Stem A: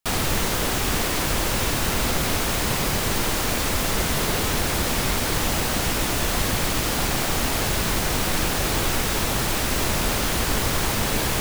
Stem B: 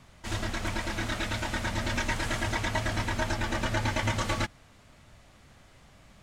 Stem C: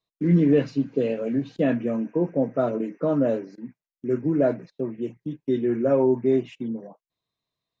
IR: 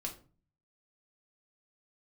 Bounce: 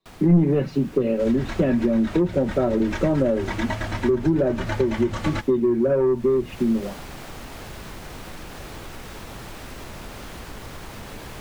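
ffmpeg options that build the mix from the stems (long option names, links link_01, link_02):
-filter_complex "[0:a]acompressor=threshold=-23dB:ratio=6,volume=-9dB,afade=type=in:start_time=6.02:duration=0.42:silence=0.421697[link_01];[1:a]adelay=950,volume=2.5dB[link_02];[2:a]equalizer=frequency=310:width_type=o:width=1.1:gain=6,aecho=1:1:5.3:0.71,acontrast=75,volume=-1dB,asplit=2[link_03][link_04];[link_04]apad=whole_len=316633[link_05];[link_02][link_05]sidechaincompress=threshold=-18dB:ratio=8:attack=43:release=105[link_06];[link_01][link_06][link_03]amix=inputs=3:normalize=0,highshelf=frequency=4100:gain=-8.5,acrossover=split=130[link_07][link_08];[link_08]acompressor=threshold=-18dB:ratio=6[link_09];[link_07][link_09]amix=inputs=2:normalize=0"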